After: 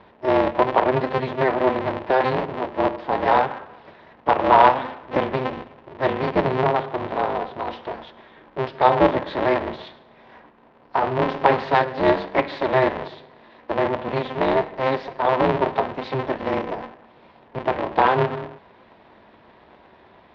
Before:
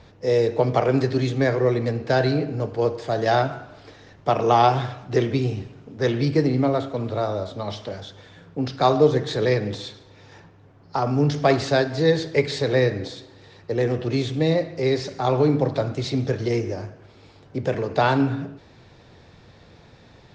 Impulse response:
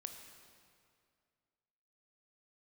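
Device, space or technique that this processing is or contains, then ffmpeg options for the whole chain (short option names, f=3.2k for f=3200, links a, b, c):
ring modulator pedal into a guitar cabinet: -af "aeval=exprs='val(0)*sgn(sin(2*PI*130*n/s))':c=same,highpass=84,equalizer=f=260:t=q:w=4:g=-6,equalizer=f=380:t=q:w=4:g=4,equalizer=f=670:t=q:w=4:g=5,equalizer=f=970:t=q:w=4:g=9,equalizer=f=1.8k:t=q:w=4:g=3,lowpass=f=3.4k:w=0.5412,lowpass=f=3.4k:w=1.3066,volume=-2dB"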